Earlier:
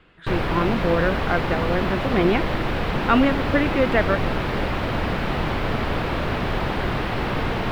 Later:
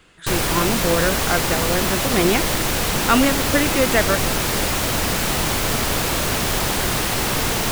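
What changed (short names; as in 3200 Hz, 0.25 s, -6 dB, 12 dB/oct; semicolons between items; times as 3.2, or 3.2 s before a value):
speech: add high shelf 4700 Hz -7 dB; master: remove air absorption 400 m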